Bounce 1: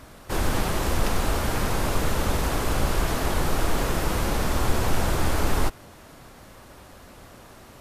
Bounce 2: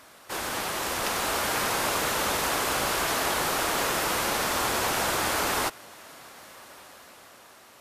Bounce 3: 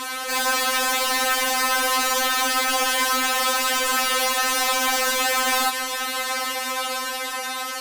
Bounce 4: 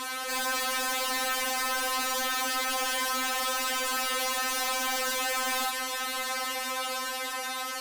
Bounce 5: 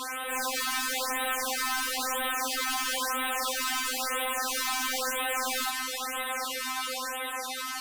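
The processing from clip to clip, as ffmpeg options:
ffmpeg -i in.wav -af "highpass=frequency=900:poles=1,dynaudnorm=framelen=230:gausssize=9:maxgain=5dB" out.wav
ffmpeg -i in.wav -filter_complex "[0:a]asplit=2[link_01][link_02];[link_02]highpass=frequency=720:poles=1,volume=35dB,asoftclip=type=tanh:threshold=-13dB[link_03];[link_01][link_03]amix=inputs=2:normalize=0,lowpass=frequency=7500:poles=1,volume=-6dB,afftfilt=real='re*3.46*eq(mod(b,12),0)':imag='im*3.46*eq(mod(b,12),0)':win_size=2048:overlap=0.75" out.wav
ffmpeg -i in.wav -af "asoftclip=type=tanh:threshold=-21.5dB,volume=-4dB" out.wav
ffmpeg -i in.wav -af "afftfilt=real='re*(1-between(b*sr/1024,480*pow(5800/480,0.5+0.5*sin(2*PI*1*pts/sr))/1.41,480*pow(5800/480,0.5+0.5*sin(2*PI*1*pts/sr))*1.41))':imag='im*(1-between(b*sr/1024,480*pow(5800/480,0.5+0.5*sin(2*PI*1*pts/sr))/1.41,480*pow(5800/480,0.5+0.5*sin(2*PI*1*pts/sr))*1.41))':win_size=1024:overlap=0.75" out.wav

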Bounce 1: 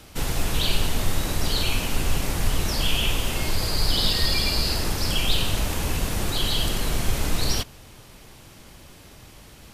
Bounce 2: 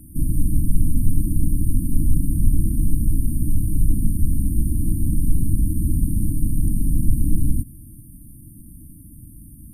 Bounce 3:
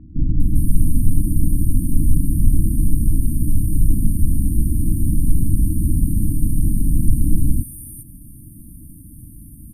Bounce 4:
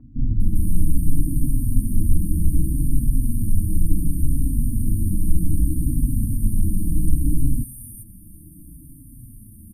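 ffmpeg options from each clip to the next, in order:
ffmpeg -i in.wav -filter_complex "[0:a]acrossover=split=7400[link_01][link_02];[link_02]acompressor=threshold=-46dB:ratio=4:attack=1:release=60[link_03];[link_01][link_03]amix=inputs=2:normalize=0,afftfilt=real='re*(1-between(b*sr/4096,330,8600))':imag='im*(1-between(b*sr/4096,330,8600))':win_size=4096:overlap=0.75,volume=7dB" out.wav
ffmpeg -i in.wav -filter_complex "[0:a]acrossover=split=1700[link_01][link_02];[link_02]adelay=400[link_03];[link_01][link_03]amix=inputs=2:normalize=0,volume=2.5dB" out.wav
ffmpeg -i in.wav -filter_complex "[0:a]aeval=exprs='0.891*(cos(1*acos(clip(val(0)/0.891,-1,1)))-cos(1*PI/2))+0.0126*(cos(4*acos(clip(val(0)/0.891,-1,1)))-cos(4*PI/2))':channel_layout=same,asplit=2[link_01][link_02];[link_02]adelay=4.9,afreqshift=-0.66[link_03];[link_01][link_03]amix=inputs=2:normalize=1" out.wav

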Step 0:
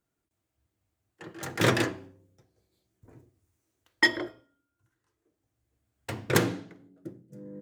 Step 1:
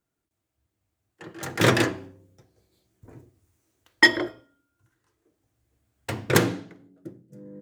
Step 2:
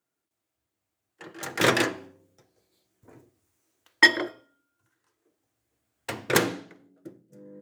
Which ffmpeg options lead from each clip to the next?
ffmpeg -i in.wav -af "dynaudnorm=framelen=390:gausssize=9:maxgain=11.5dB" out.wav
ffmpeg -i in.wav -af "highpass=frequency=350:poles=1" out.wav

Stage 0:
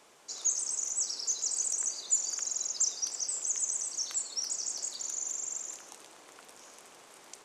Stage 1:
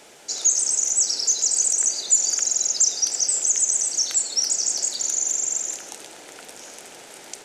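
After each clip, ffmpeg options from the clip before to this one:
ffmpeg -i in.wav -filter_complex "[0:a]equalizer=frequency=1100:width_type=o:width=0.27:gain=-13.5,asplit=2[link_01][link_02];[link_02]alimiter=level_in=0.5dB:limit=-24dB:level=0:latency=1:release=95,volume=-0.5dB,volume=0dB[link_03];[link_01][link_03]amix=inputs=2:normalize=0,volume=6.5dB" out.wav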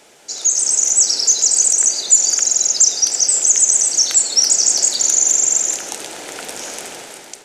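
ffmpeg -i in.wav -af "dynaudnorm=framelen=220:gausssize=5:maxgain=12.5dB" out.wav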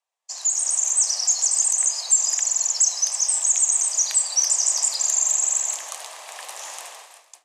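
ffmpeg -i in.wav -af "agate=range=-33dB:threshold=-29dB:ratio=3:detection=peak,afreqshift=310,volume=-6.5dB" out.wav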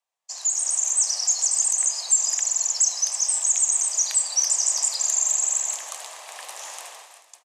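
ffmpeg -i in.wav -af "aecho=1:1:437:0.0841,volume=-1.5dB" out.wav

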